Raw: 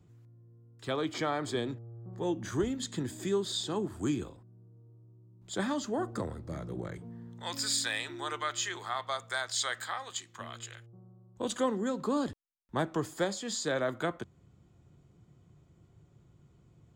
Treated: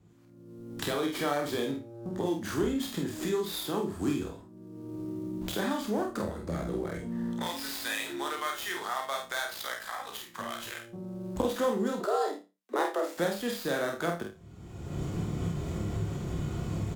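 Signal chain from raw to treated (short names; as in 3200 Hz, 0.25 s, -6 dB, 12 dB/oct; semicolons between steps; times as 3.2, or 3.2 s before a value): switching dead time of 0.07 ms; recorder AGC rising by 33 dB/s; flutter echo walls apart 5 m, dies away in 0.27 s; 12–13.17 frequency shift +190 Hz; bell 120 Hz -10.5 dB 0.29 oct; 9.53–10.13 ring modulator 28 Hz; doubler 48 ms -5 dB; Vorbis 96 kbps 48000 Hz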